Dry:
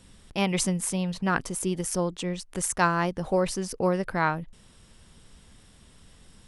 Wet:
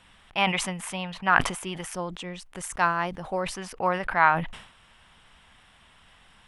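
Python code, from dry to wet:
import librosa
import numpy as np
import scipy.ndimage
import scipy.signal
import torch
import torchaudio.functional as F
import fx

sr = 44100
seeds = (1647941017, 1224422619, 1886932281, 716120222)

y = fx.band_shelf(x, sr, hz=1500.0, db=fx.steps((0.0, 14.5), (1.93, 8.0), (3.54, 14.5)), octaves=2.7)
y = fx.sustainer(y, sr, db_per_s=89.0)
y = y * librosa.db_to_amplitude(-8.0)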